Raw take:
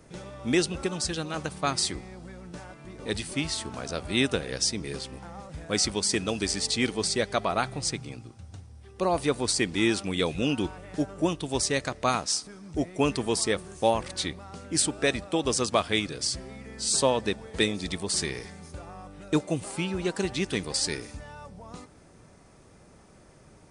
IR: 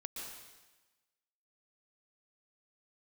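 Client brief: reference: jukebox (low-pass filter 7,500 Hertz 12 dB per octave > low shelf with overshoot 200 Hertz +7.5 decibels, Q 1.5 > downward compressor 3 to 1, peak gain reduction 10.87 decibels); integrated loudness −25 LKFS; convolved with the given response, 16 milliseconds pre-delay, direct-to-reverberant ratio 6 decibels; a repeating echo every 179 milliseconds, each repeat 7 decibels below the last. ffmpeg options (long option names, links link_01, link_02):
-filter_complex "[0:a]aecho=1:1:179|358|537|716|895:0.447|0.201|0.0905|0.0407|0.0183,asplit=2[link_01][link_02];[1:a]atrim=start_sample=2205,adelay=16[link_03];[link_02][link_03]afir=irnorm=-1:irlink=0,volume=-4.5dB[link_04];[link_01][link_04]amix=inputs=2:normalize=0,lowpass=7500,lowshelf=frequency=200:width_type=q:width=1.5:gain=7.5,acompressor=threshold=-31dB:ratio=3,volume=8dB"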